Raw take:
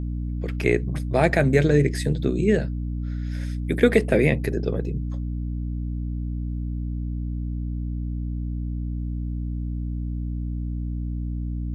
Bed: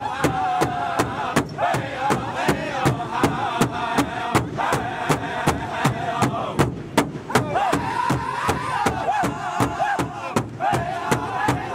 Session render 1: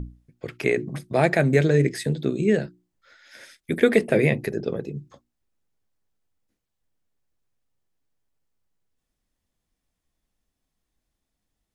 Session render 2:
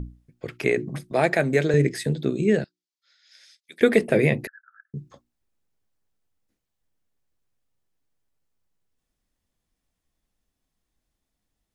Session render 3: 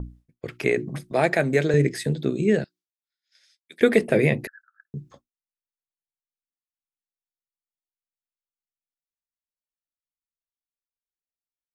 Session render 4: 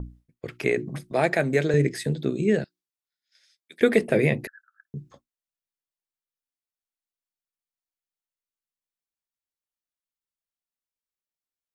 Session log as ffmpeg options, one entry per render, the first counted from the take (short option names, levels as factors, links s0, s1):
-af "bandreject=f=60:t=h:w=6,bandreject=f=120:t=h:w=6,bandreject=f=180:t=h:w=6,bandreject=f=240:t=h:w=6,bandreject=f=300:t=h:w=6,bandreject=f=360:t=h:w=6"
-filter_complex "[0:a]asettb=1/sr,asplit=3[s0][s1][s2];[s0]atrim=end=1.114[s3];[s1]atrim=start=1.11:end=1.74,asetpts=PTS-STARTPTS,afade=t=in:d=0.004:c=qsin,afade=t=out:st=0.626:d=0.004:c=qsin,highpass=f=250:p=1[s4];[s2]atrim=start=1.736[s5];[s3][s4]acrossfade=d=0.004:c1=hsin:c2=qsin[s6];[s6][s5]acrossfade=d=0.004:c1=qsin:c2=hsin,asettb=1/sr,asplit=3[s7][s8][s9];[s7]atrim=end=2.644[s10];[s8]atrim=start=2.64:end=3.81,asetpts=PTS-STARTPTS,afade=t=in:d=0.004:c=qsin,afade=t=out:st=1.166:d=0.004:c=qsin,bandpass=f=4700:t=q:w=1.8[s11];[s9]atrim=start=3.806[s12];[s10][s11]acrossfade=d=0.004:c1=hsin:c2=qsin[s13];[s13][s12]acrossfade=d=0.004:c1=qsin:c2=hsin,asettb=1/sr,asplit=3[s14][s15][s16];[s14]atrim=end=4.474[s17];[s15]atrim=start=4.47:end=4.94,asetpts=PTS-STARTPTS,afade=t=in:d=0.004:c=qsin,afade=t=out:st=0.466:d=0.004:c=qsin,asuperpass=centerf=1500:order=12:qfactor=3.3[s18];[s16]atrim=start=4.936[s19];[s17][s18]acrossfade=d=0.004:c1=hsin:c2=qsin[s20];[s20][s19]acrossfade=d=0.004:c1=qsin:c2=hsin"
-af "agate=range=0.0224:threshold=0.00501:ratio=3:detection=peak"
-af "volume=0.841"